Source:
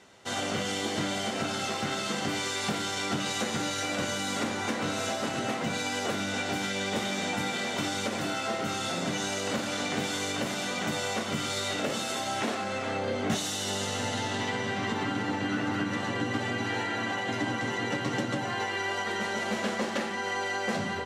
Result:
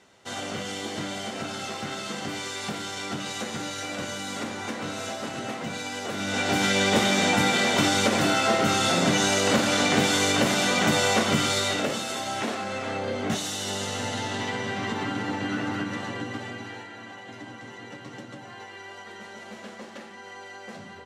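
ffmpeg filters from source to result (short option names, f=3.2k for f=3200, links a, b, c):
-af "volume=9dB,afade=t=in:st=6.1:d=0.61:silence=0.281838,afade=t=out:st=11.26:d=0.76:silence=0.398107,afade=t=out:st=15.63:d=1.26:silence=0.251189"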